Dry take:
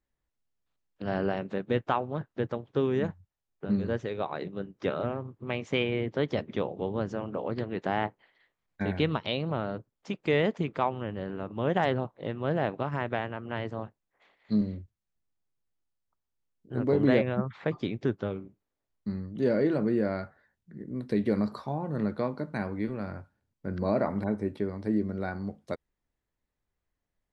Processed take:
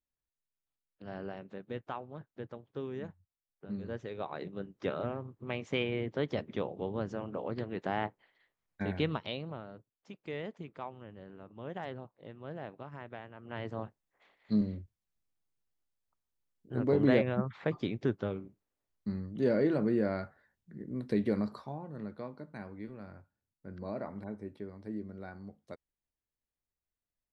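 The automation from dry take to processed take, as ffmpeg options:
-af "volume=2.37,afade=t=in:st=3.67:d=0.85:silence=0.398107,afade=t=out:st=9.07:d=0.58:silence=0.316228,afade=t=in:st=13.34:d=0.45:silence=0.251189,afade=t=out:st=21.15:d=0.77:silence=0.334965"

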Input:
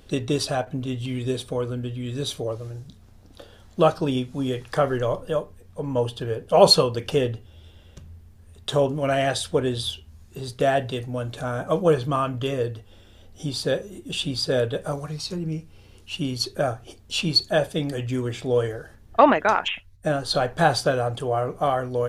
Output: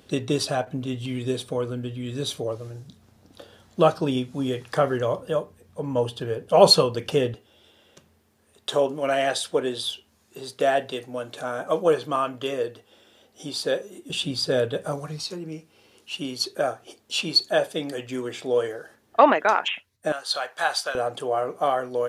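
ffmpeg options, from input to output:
-af "asetnsamples=n=441:p=0,asendcmd='7.34 highpass f 300;14.1 highpass f 140;15.23 highpass f 290;20.12 highpass f 1000;20.95 highpass f 290',highpass=120"

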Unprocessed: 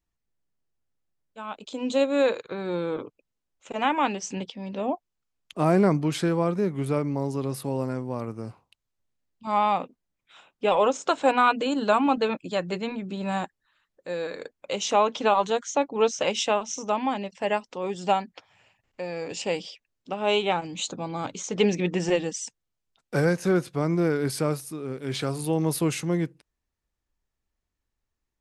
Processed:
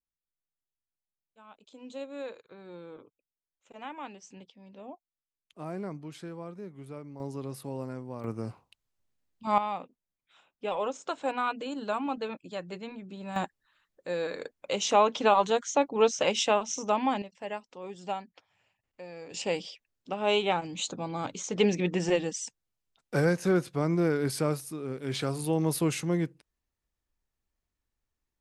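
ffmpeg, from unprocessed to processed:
-af "asetnsamples=n=441:p=0,asendcmd='7.2 volume volume -8.5dB;8.24 volume volume 0dB;9.58 volume volume -10dB;13.36 volume volume -1dB;17.22 volume volume -11dB;19.34 volume volume -2.5dB',volume=0.141"

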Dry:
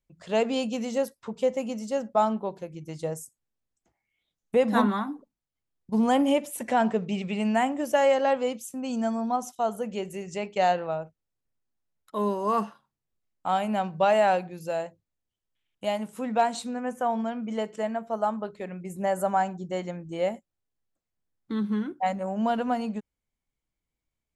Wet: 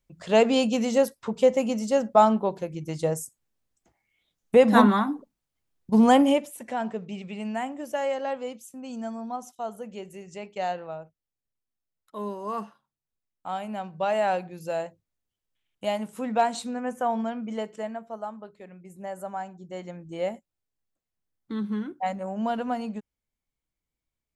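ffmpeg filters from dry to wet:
-af "volume=10,afade=t=out:st=6.11:d=0.44:silence=0.251189,afade=t=in:st=13.87:d=0.94:silence=0.446684,afade=t=out:st=17.24:d=1.06:silence=0.316228,afade=t=in:st=19.55:d=0.63:silence=0.421697"

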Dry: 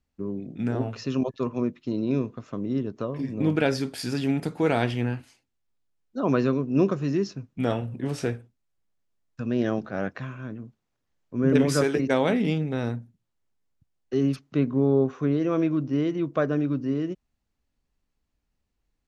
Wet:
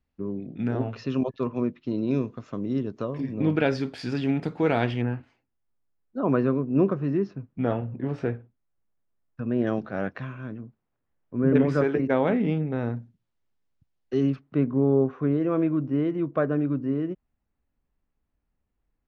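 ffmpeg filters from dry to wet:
-af "asetnsamples=n=441:p=0,asendcmd='2.08 lowpass f 7000;3.2 lowpass f 3700;5.02 lowpass f 1800;9.67 lowpass f 3800;10.61 lowpass f 1900;12.97 lowpass f 4700;14.3 lowpass f 2000',lowpass=3700"

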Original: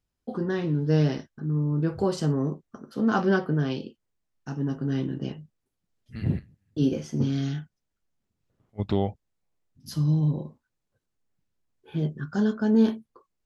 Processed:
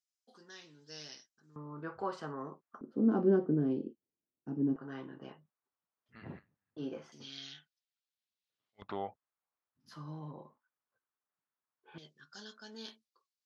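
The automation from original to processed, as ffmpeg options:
-af "asetnsamples=n=441:p=0,asendcmd='1.56 bandpass f 1200;2.81 bandpass f 310;4.76 bandpass f 1100;7.12 bandpass f 3800;8.82 bandpass f 1200;11.98 bandpass f 4700',bandpass=f=6100:t=q:w=1.9:csg=0"

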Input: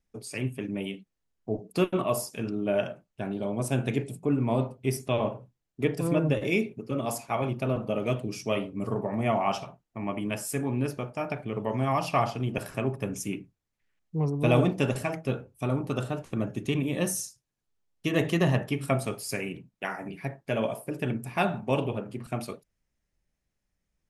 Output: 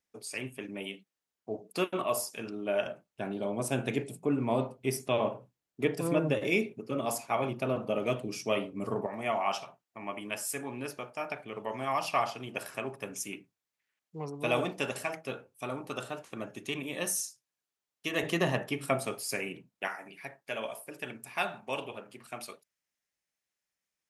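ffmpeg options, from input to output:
-af "asetnsamples=n=441:p=0,asendcmd='2.86 highpass f 290;9.06 highpass f 870;18.23 highpass f 400;19.88 highpass f 1400',highpass=f=630:p=1"

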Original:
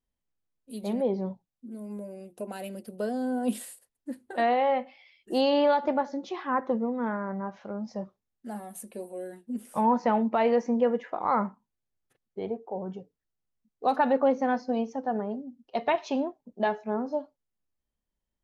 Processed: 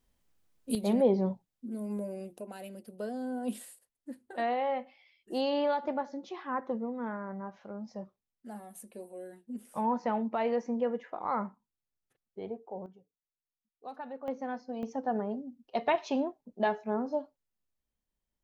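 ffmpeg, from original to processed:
-af "asetnsamples=n=441:p=0,asendcmd='0.75 volume volume 2.5dB;2.38 volume volume -6.5dB;12.86 volume volume -18.5dB;14.28 volume volume -10.5dB;14.83 volume volume -2dB',volume=3.76"

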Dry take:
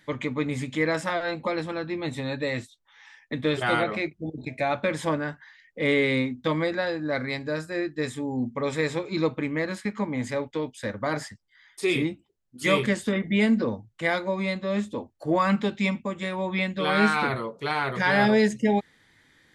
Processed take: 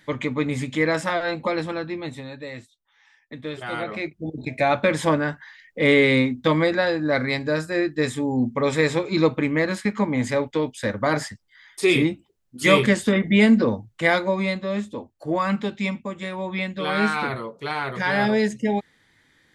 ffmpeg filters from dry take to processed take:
-af "volume=6.68,afade=t=out:st=1.69:d=0.61:silence=0.298538,afade=t=in:st=3.7:d=0.97:silence=0.223872,afade=t=out:st=14.16:d=0.67:silence=0.473151"

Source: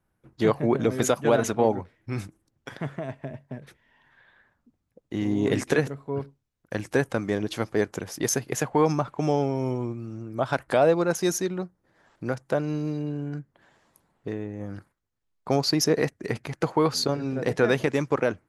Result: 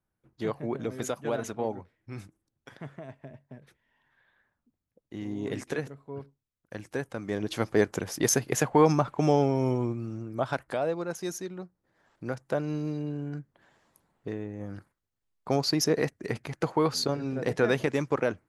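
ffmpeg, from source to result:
-af "volume=2.37,afade=t=in:st=7.16:d=0.58:silence=0.298538,afade=t=out:st=10.04:d=0.74:silence=0.298538,afade=t=in:st=11.51:d=1.23:silence=0.473151"

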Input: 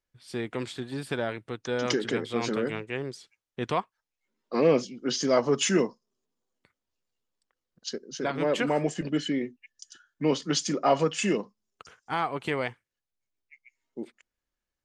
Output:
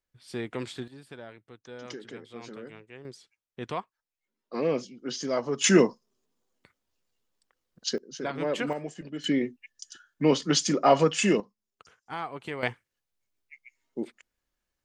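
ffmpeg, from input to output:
-af "asetnsamples=n=441:p=0,asendcmd='0.88 volume volume -14dB;3.05 volume volume -5.5dB;5.64 volume volume 5dB;7.98 volume volume -3dB;8.73 volume volume -9.5dB;9.24 volume volume 3dB;11.4 volume volume -6.5dB;12.63 volume volume 4dB',volume=0.841"

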